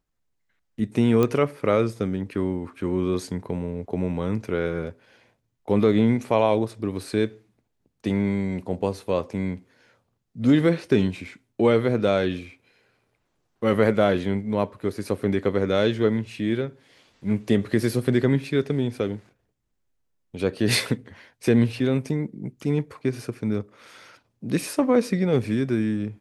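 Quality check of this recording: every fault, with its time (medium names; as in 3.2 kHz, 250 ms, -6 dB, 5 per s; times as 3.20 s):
1.23 s: pop -10 dBFS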